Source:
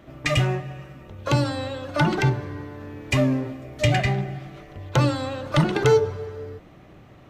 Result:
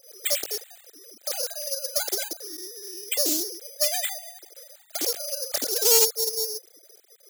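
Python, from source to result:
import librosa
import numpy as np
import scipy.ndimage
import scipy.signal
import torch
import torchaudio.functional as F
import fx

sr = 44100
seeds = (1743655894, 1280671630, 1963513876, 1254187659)

y = fx.sine_speech(x, sr)
y = 10.0 ** (-16.5 / 20.0) * np.tanh(y / 10.0 ** (-16.5 / 20.0))
y = fx.fixed_phaser(y, sr, hz=420.0, stages=4)
y = (np.kron(scipy.signal.resample_poly(y, 1, 8), np.eye(8)[0]) * 8)[:len(y)]
y = fx.doppler_dist(y, sr, depth_ms=0.3)
y = F.gain(torch.from_numpy(y), -5.0).numpy()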